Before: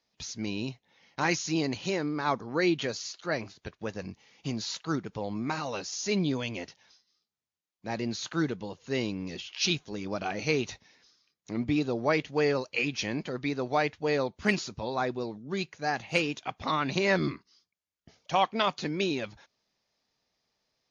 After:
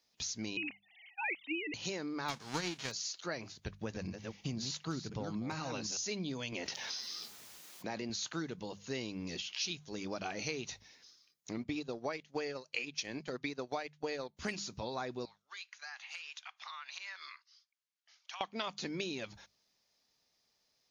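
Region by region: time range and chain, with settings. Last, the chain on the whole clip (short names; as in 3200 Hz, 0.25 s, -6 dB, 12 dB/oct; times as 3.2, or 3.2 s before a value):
0.57–1.74 sine-wave speech + resonant high shelf 1800 Hz +6.5 dB, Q 3
2.28–2.9 spectral whitening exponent 0.3 + transient shaper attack +12 dB, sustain 0 dB + air absorption 96 m
3.56–5.97 reverse delay 0.256 s, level -8 dB + tone controls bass +7 dB, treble -2 dB + hard clip -17 dBFS
6.52–8.1 HPF 220 Hz 6 dB/oct + high shelf 4400 Hz -6.5 dB + fast leveller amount 70%
11.58–14.37 low shelf 100 Hz -12 dB + transient shaper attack +5 dB, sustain -12 dB
15.25–18.41 HPF 1100 Hz 24 dB/oct + compressor, threshold -41 dBFS + air absorption 90 m
whole clip: high shelf 4200 Hz +10.5 dB; notches 50/100/150/200 Hz; compressor 5:1, threshold -33 dBFS; gain -3 dB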